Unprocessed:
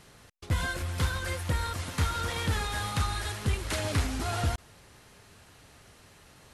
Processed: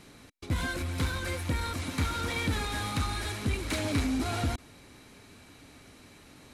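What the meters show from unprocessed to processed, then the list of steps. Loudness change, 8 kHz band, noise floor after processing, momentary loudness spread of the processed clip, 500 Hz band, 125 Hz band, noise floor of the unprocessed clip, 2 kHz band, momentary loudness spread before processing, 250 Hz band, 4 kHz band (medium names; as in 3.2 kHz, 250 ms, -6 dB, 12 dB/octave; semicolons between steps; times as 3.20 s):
-0.5 dB, -2.0 dB, -54 dBFS, 4 LU, 0.0 dB, -2.0 dB, -56 dBFS, -0.5 dB, 3 LU, +5.0 dB, -0.5 dB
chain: small resonant body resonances 270/2300/3900 Hz, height 11 dB, ringing for 30 ms; in parallel at -3 dB: overload inside the chain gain 31.5 dB; on the sum: trim -5 dB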